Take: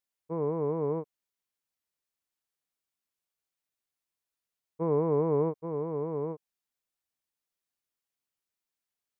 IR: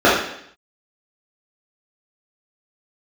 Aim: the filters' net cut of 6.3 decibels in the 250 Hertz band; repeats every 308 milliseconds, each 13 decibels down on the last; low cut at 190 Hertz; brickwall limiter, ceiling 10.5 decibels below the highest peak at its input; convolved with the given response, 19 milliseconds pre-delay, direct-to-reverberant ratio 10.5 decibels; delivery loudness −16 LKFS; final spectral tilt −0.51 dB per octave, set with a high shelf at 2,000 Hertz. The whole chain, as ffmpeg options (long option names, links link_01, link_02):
-filter_complex "[0:a]highpass=190,equalizer=frequency=250:width_type=o:gain=-8,highshelf=frequency=2000:gain=7,alimiter=level_in=6dB:limit=-24dB:level=0:latency=1,volume=-6dB,aecho=1:1:308|616|924:0.224|0.0493|0.0108,asplit=2[link_01][link_02];[1:a]atrim=start_sample=2205,adelay=19[link_03];[link_02][link_03]afir=irnorm=-1:irlink=0,volume=-39dB[link_04];[link_01][link_04]amix=inputs=2:normalize=0,volume=23dB"